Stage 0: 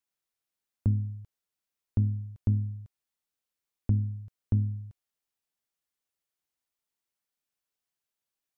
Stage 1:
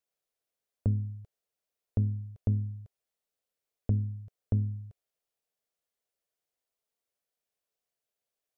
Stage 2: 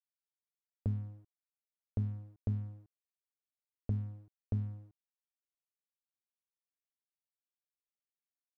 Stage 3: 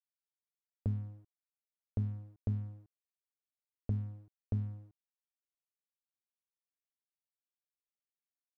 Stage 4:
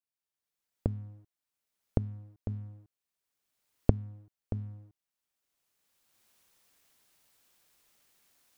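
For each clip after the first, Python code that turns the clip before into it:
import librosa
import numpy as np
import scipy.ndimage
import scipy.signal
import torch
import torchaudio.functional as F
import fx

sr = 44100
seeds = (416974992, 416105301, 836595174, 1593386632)

y1 = fx.band_shelf(x, sr, hz=540.0, db=8.5, octaves=1.0)
y1 = F.gain(torch.from_numpy(y1), -2.0).numpy()
y2 = np.sign(y1) * np.maximum(np.abs(y1) - 10.0 ** (-48.0 / 20.0), 0.0)
y2 = F.gain(torch.from_numpy(y2), -6.0).numpy()
y3 = y2
y4 = fx.recorder_agc(y3, sr, target_db=-31.0, rise_db_per_s=18.0, max_gain_db=30)
y4 = F.gain(torch.from_numpy(y4), -3.0).numpy()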